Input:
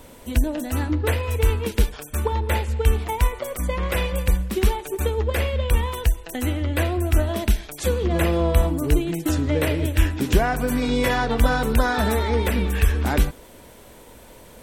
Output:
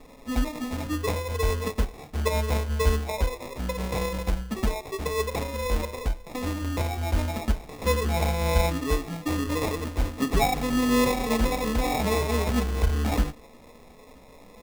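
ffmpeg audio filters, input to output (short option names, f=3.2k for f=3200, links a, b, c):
-af "aecho=1:1:4.3:0.97,flanger=delay=6.8:depth=7.3:regen=33:speed=0.19:shape=triangular,acrusher=samples=29:mix=1:aa=0.000001,volume=-3.5dB"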